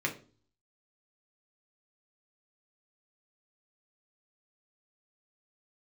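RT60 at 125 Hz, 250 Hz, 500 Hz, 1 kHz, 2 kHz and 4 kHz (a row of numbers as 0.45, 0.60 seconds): 0.70, 0.55, 0.45, 0.35, 0.30, 0.35 seconds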